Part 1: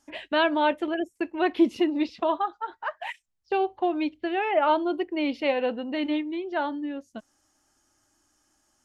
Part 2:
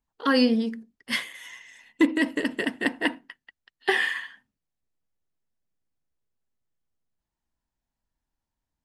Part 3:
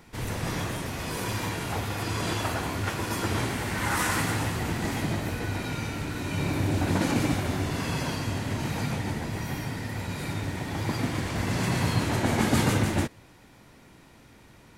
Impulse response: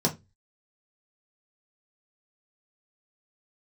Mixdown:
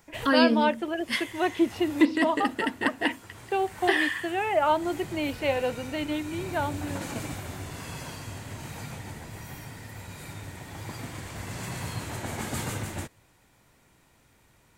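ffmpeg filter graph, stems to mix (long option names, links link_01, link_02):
-filter_complex "[0:a]highpass=300,volume=-1dB[link_01];[1:a]volume=-1.5dB,asplit=2[link_02][link_03];[2:a]equalizer=frequency=250:width=0.93:gain=-5,aexciter=amount=2.2:drive=3.1:freq=7000,volume=-7.5dB[link_04];[link_03]apad=whole_len=651664[link_05];[link_04][link_05]sidechaincompress=threshold=-35dB:ratio=8:attack=31:release=1280[link_06];[link_01][link_02][link_06]amix=inputs=3:normalize=0"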